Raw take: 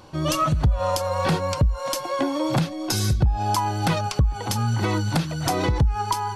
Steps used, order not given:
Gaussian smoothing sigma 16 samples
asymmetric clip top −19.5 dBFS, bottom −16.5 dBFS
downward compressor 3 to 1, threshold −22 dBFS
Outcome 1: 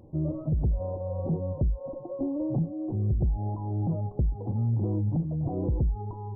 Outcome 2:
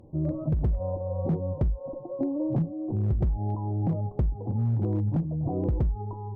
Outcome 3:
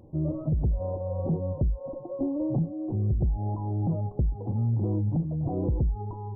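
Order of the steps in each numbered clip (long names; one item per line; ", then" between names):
asymmetric clip, then downward compressor, then Gaussian smoothing
Gaussian smoothing, then asymmetric clip, then downward compressor
asymmetric clip, then Gaussian smoothing, then downward compressor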